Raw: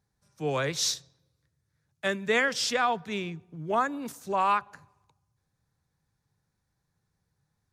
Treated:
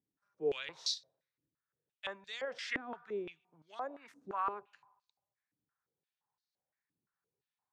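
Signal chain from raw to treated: 2.45–2.93 s: peaking EQ 1.6 kHz +8 dB 1.1 oct; peak limiter -18 dBFS, peak gain reduction 8 dB; step-sequenced band-pass 5.8 Hz 290–4300 Hz

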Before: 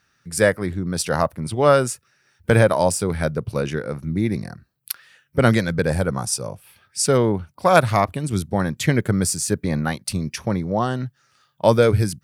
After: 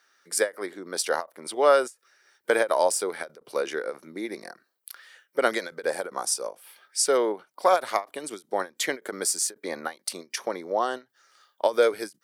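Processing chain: in parallel at -1 dB: compression, threshold -26 dBFS, peak gain reduction 16.5 dB; on the sum: high-pass 370 Hz 24 dB/octave; band-stop 2.6 kHz, Q 10; endings held to a fixed fall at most 300 dB/s; trim -4.5 dB

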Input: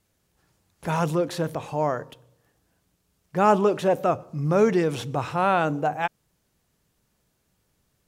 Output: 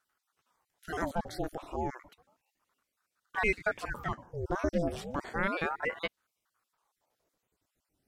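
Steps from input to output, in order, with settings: random holes in the spectrogram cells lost 42%; ring modulator with a swept carrier 780 Hz, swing 80%, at 0.32 Hz; trim -5 dB

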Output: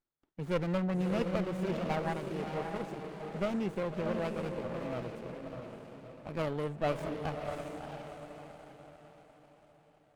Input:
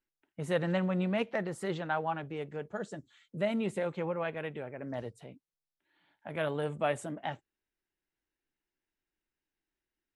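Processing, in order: echo that smears into a reverb 637 ms, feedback 44%, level -4 dB; sliding maximum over 17 samples; trim -1.5 dB

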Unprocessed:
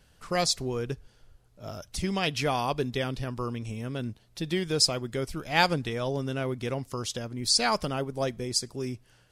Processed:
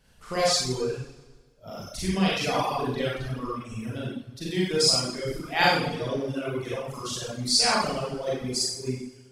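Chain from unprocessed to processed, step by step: Schroeder reverb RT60 1.4 s, combs from 32 ms, DRR -8 dB; reverb removal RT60 1.9 s; trim -4 dB

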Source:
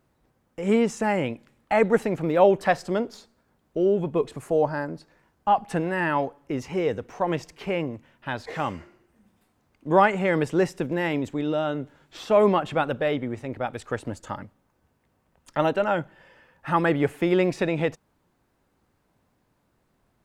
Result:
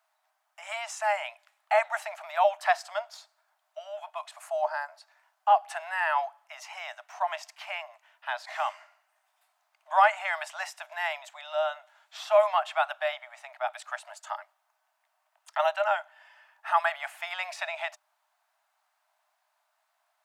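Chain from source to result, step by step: Chebyshev high-pass 610 Hz, order 10

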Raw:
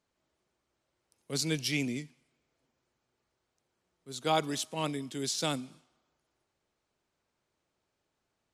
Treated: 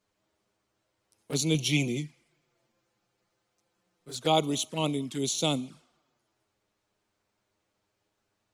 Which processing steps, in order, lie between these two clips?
1.54–4.16 s: comb 5.8 ms, depth 59%; touch-sensitive flanger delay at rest 9.9 ms, full sweep at -32.5 dBFS; trim +6 dB

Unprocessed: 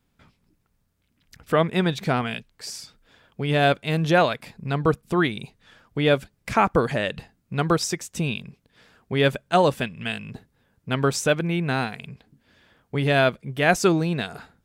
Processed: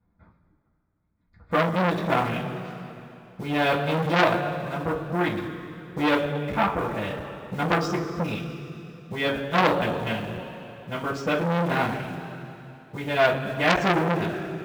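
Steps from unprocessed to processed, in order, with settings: local Wiener filter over 15 samples; distance through air 190 m; in parallel at -9 dB: word length cut 6-bit, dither none; on the sum: tremolo 0.51 Hz, depth 56%; two-slope reverb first 0.21 s, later 2.8 s, from -18 dB, DRR -9 dB; transformer saturation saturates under 2.5 kHz; trim -6 dB

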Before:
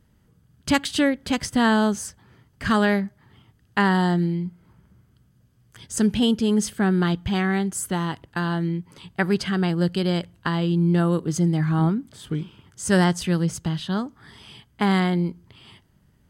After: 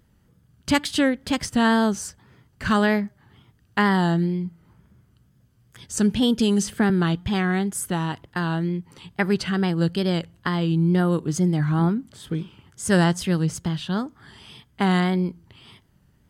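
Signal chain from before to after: wow and flutter 80 cents; 6.39–6.90 s: three bands compressed up and down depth 100%

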